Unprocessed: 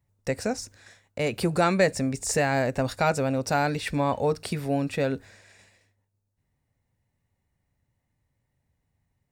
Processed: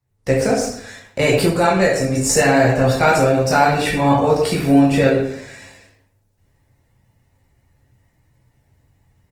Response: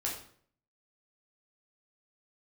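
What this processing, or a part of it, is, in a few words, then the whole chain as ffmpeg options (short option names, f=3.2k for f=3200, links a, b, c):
speakerphone in a meeting room: -filter_complex "[1:a]atrim=start_sample=2205[a];[0:a][a]afir=irnorm=-1:irlink=0,asplit=2[b][c];[c]adelay=110,highpass=300,lowpass=3.4k,asoftclip=type=hard:threshold=-14.5dB,volume=-11dB[d];[b][d]amix=inputs=2:normalize=0,dynaudnorm=f=140:g=3:m=13dB,volume=-1dB" -ar 48000 -c:a libopus -b:a 20k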